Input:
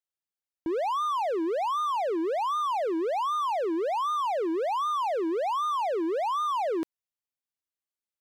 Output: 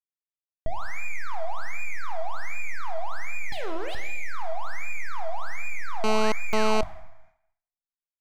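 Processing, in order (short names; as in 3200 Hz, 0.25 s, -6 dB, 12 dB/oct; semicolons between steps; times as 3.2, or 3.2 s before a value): 3.52–3.95 self-modulated delay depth 0.43 ms; LPF 7000 Hz; full-wave rectifier; two-slope reverb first 0.84 s, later 2.1 s, DRR 5.5 dB; expander -56 dBFS; low shelf 270 Hz +11.5 dB; speakerphone echo 0.16 s, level -15 dB; dynamic EQ 1700 Hz, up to -4 dB, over -39 dBFS, Q 1.1; 6.04–6.81 GSM buzz -22 dBFS; gain -2 dB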